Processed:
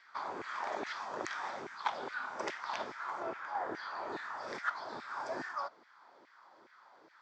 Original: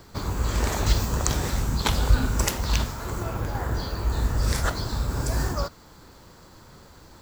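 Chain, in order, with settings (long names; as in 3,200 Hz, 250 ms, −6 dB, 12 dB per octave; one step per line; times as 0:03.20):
auto-filter high-pass saw down 2.4 Hz 350–2,100 Hz
loudspeaker in its box 110–4,300 Hz, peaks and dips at 480 Hz −8 dB, 2,800 Hz −9 dB, 4,100 Hz −9 dB
speech leveller within 3 dB 0.5 s
level −8 dB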